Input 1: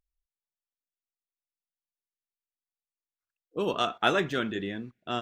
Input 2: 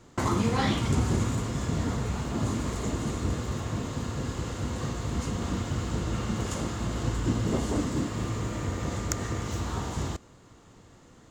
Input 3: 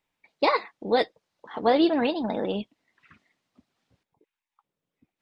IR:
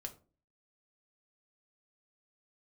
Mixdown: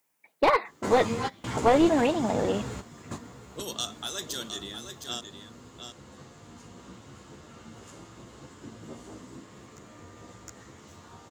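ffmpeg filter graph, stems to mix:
-filter_complex "[0:a]alimiter=limit=-19.5dB:level=0:latency=1:release=280,aexciter=amount=15.9:drive=6.6:freq=3800,volume=-8dB,asplit=2[link_01][link_02];[link_02]volume=-8dB[link_03];[1:a]asplit=2[link_04][link_05];[link_05]adelay=11.5,afreqshift=0.85[link_06];[link_04][link_06]amix=inputs=2:normalize=1,adelay=650,volume=0.5dB,asplit=2[link_07][link_08];[link_08]volume=-11.5dB[link_09];[2:a]lowpass=2600,volume=2.5dB,asplit=2[link_10][link_11];[link_11]apad=whole_len=527613[link_12];[link_07][link_12]sidechaingate=range=-23dB:threshold=-52dB:ratio=16:detection=peak[link_13];[link_03][link_09]amix=inputs=2:normalize=0,aecho=0:1:713:1[link_14];[link_01][link_13][link_10][link_14]amix=inputs=4:normalize=0,highpass=frequency=220:poles=1,aeval=exprs='clip(val(0),-1,0.126)':channel_layout=same"

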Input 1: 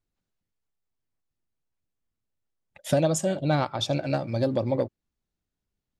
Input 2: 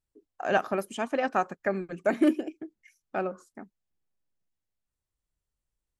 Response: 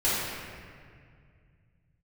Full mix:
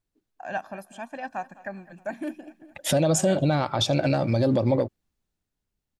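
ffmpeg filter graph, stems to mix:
-filter_complex "[0:a]dynaudnorm=framelen=250:gausssize=11:maxgain=14dB,volume=0dB[link_01];[1:a]aecho=1:1:1.2:0.72,volume=-8.5dB,asplit=2[link_02][link_03];[link_03]volume=-19.5dB,aecho=0:1:208|416|624|832|1040|1248|1456|1664:1|0.55|0.303|0.166|0.0915|0.0503|0.0277|0.0152[link_04];[link_01][link_02][link_04]amix=inputs=3:normalize=0,alimiter=limit=-13dB:level=0:latency=1:release=74"

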